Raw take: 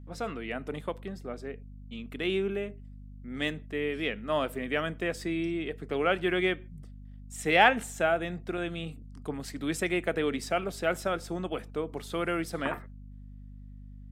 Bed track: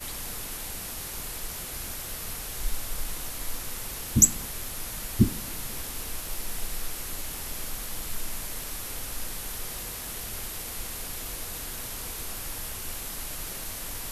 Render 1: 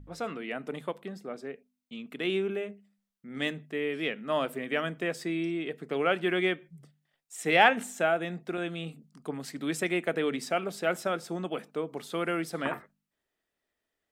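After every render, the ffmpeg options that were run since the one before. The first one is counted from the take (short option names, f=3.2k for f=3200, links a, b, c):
-af "bandreject=f=50:t=h:w=4,bandreject=f=100:t=h:w=4,bandreject=f=150:t=h:w=4,bandreject=f=200:t=h:w=4,bandreject=f=250:t=h:w=4"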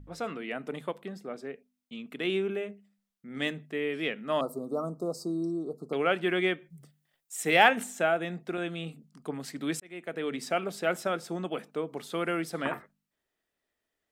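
-filter_complex "[0:a]asettb=1/sr,asplit=3[a][b][c];[a]atrim=end=4.414[d];[b]atrim=start=4.41:end=5.93,asetpts=PTS-STARTPTS,afade=t=in:d=0.004:c=qsin,afade=t=out:st=1.516:d=0.004:c=qsin,asuperstop=centerf=2300:order=20:qfactor=0.83[e];[c]atrim=start=5.926[f];[d][e]acrossfade=d=0.004:c1=hsin:c2=qsin[g];[g][f]acrossfade=d=0.004:c1=qsin:c2=hsin,asettb=1/sr,asplit=3[h][i][j];[h]atrim=end=6.704[k];[i]atrim=start=6.7:end=7.84,asetpts=PTS-STARTPTS,afade=t=in:d=0.004:c=qsin,afade=t=out:st=1.136:d=0.004:c=qsin,highshelf=f=8.4k:g=10[l];[j]atrim=start=7.836[m];[k][l]acrossfade=d=0.004:c1=hsin:c2=qsin[n];[n][m]acrossfade=d=0.004:c1=qsin:c2=hsin,asplit=2[o][p];[o]atrim=end=9.8,asetpts=PTS-STARTPTS,afade=t=out:st=9.796:d=0.004:c=hsin[q];[p]atrim=start=9.8,asetpts=PTS-STARTPTS,afade=t=in:d=0.71[r];[q][r]concat=n=2:v=0:a=1"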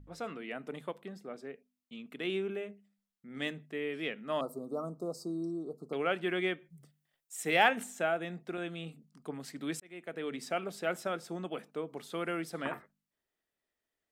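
-af "volume=-5dB"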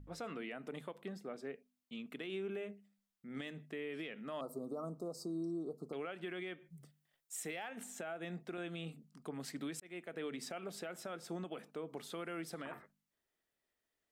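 -af "acompressor=threshold=-37dB:ratio=3,alimiter=level_in=9.5dB:limit=-24dB:level=0:latency=1:release=104,volume=-9.5dB"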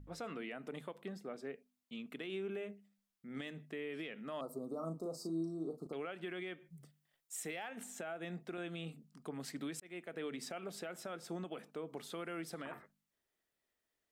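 -filter_complex "[0:a]asettb=1/sr,asplit=3[a][b][c];[a]atrim=end=4.704[d];[b]atrim=start=4.7:end=5.87,asetpts=PTS-STARTPTS,afade=t=in:d=0.004:c=qsin,afade=t=out:st=1.166:d=0.004:c=qsin,asplit=2[e][f];[f]adelay=37,volume=-6.5dB[g];[e][g]amix=inputs=2:normalize=0,atrim=end_sample=51597[h];[c]atrim=start=5.866[i];[d][h]acrossfade=d=0.004:c1=hsin:c2=qsin[j];[j][i]acrossfade=d=0.004:c1=qsin:c2=hsin"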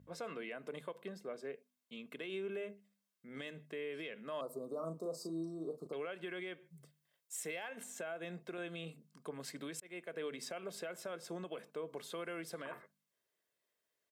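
-af "highpass=150,aecho=1:1:1.9:0.41"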